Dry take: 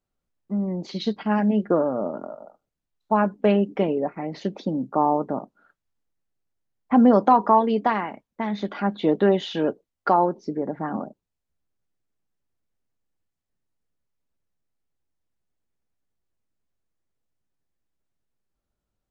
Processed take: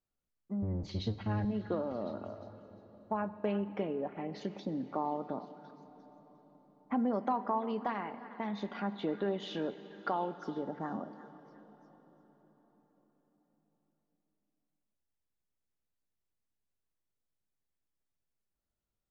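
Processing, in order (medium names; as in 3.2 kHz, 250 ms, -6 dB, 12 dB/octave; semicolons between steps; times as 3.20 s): 0.62–1.45 s: octave divider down 1 oct, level +4 dB; compression 2:1, threshold -26 dBFS, peak gain reduction 8.5 dB; repeats whose band climbs or falls 352 ms, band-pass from 1.6 kHz, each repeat 0.7 oct, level -12 dB; on a send at -13 dB: reverberation RT60 5.0 s, pre-delay 23 ms; on the sum: trim -8.5 dB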